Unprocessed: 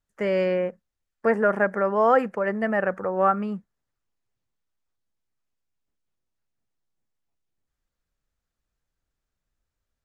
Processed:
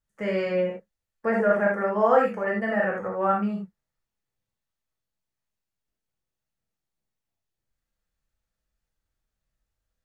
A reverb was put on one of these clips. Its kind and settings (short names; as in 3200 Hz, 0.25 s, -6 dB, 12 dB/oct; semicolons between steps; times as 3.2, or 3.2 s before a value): non-linear reverb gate 0.11 s flat, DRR -3 dB; gain -5.5 dB